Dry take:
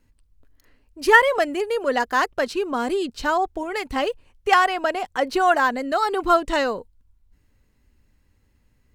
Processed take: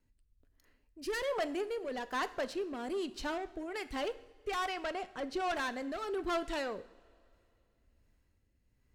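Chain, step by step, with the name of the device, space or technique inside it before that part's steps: 4.72–5.54 LPF 9600 Hz; overdriven rotary cabinet (tube stage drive 21 dB, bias 0.25; rotary speaker horn 1.2 Hz); two-slope reverb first 0.68 s, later 2.8 s, from -16 dB, DRR 12.5 dB; gain -8 dB

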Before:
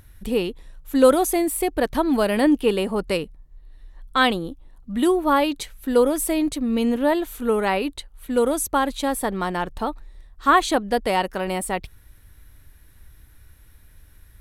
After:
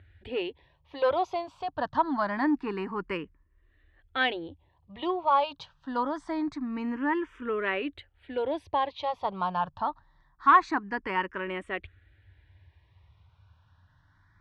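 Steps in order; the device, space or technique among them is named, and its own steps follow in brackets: barber-pole phaser into a guitar amplifier (endless phaser +0.25 Hz; soft clip -9 dBFS, distortion -21 dB; speaker cabinet 81–4100 Hz, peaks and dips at 89 Hz +9 dB, 220 Hz -8 dB, 480 Hz -6 dB, 1000 Hz +8 dB, 1700 Hz +4 dB, 3900 Hz -4 dB); gain -4 dB

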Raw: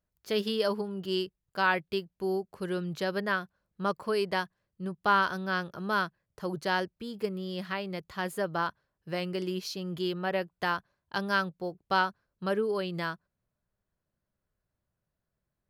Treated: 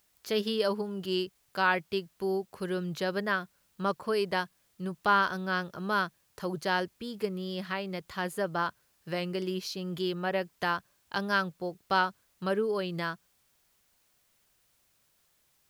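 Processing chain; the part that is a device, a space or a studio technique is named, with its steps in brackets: noise-reduction cassette on a plain deck (mismatched tape noise reduction encoder only; wow and flutter 23 cents; white noise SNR 38 dB)

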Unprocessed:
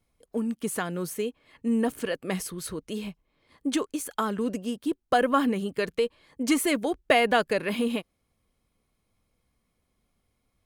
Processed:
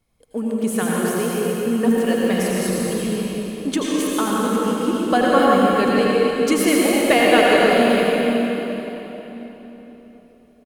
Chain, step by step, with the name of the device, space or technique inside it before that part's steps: cave (echo 0.266 s -8.5 dB; reverb RT60 3.8 s, pre-delay 75 ms, DRR -5 dB); gain +3 dB

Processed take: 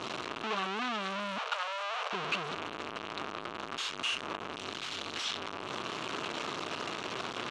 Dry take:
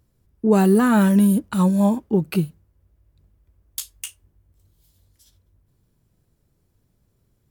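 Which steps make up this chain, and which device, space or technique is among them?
home computer beeper (infinite clipping; speaker cabinet 500–4900 Hz, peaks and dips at 530 Hz -6 dB, 790 Hz -4 dB, 1200 Hz +5 dB, 1900 Hz -4 dB, 2800 Hz +4 dB, 4900 Hz -7 dB); 1.38–2.13 steep high-pass 450 Hz 96 dB/oct; gain -4.5 dB

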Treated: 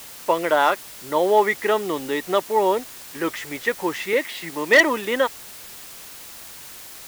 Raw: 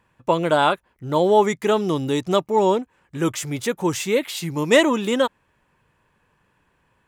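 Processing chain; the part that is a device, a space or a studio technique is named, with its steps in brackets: drive-through speaker (BPF 360–3300 Hz; bell 1900 Hz +11 dB 0.27 oct; hard clip -7.5 dBFS, distortion -17 dB; white noise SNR 17 dB); 4.13–4.8 HPF 130 Hz 24 dB/oct

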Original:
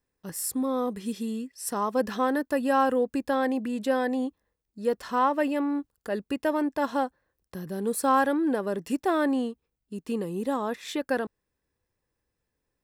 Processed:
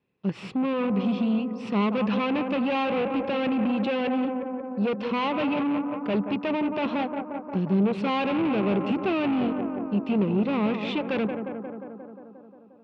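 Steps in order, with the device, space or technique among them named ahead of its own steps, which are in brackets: analogue delay pedal into a guitar amplifier (analogue delay 0.177 s, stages 2048, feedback 71%, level -11.5 dB; tube stage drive 32 dB, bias 0.55; speaker cabinet 110–3600 Hz, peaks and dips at 130 Hz +8 dB, 200 Hz +10 dB, 380 Hz +4 dB, 1700 Hz -8 dB, 2600 Hz +9 dB); gain +7.5 dB

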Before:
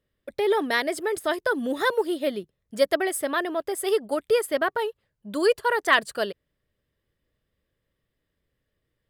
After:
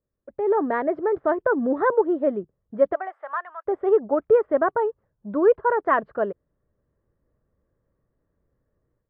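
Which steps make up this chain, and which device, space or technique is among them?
2.93–3.65 HPF 580 Hz -> 1300 Hz 24 dB/oct; action camera in a waterproof case (LPF 1300 Hz 24 dB/oct; AGC gain up to 12 dB; gain -6 dB; AAC 64 kbps 24000 Hz)

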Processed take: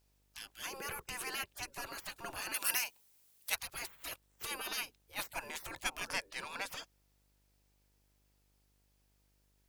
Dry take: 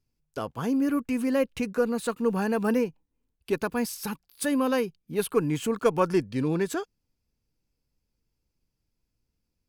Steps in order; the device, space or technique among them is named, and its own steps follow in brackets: spectral gate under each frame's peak -25 dB weak; video cassette with head-switching buzz (buzz 50 Hz, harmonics 19, -78 dBFS -7 dB/oct; white noise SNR 35 dB); 2.54–3.55 tilt +3.5 dB/oct; gain +3.5 dB

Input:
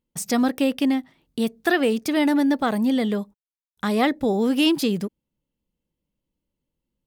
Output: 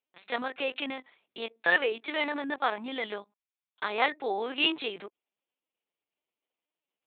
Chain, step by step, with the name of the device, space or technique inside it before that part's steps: talking toy (LPC vocoder at 8 kHz pitch kept; HPF 690 Hz 12 dB/oct; bell 2400 Hz +5 dB 0.25 oct)

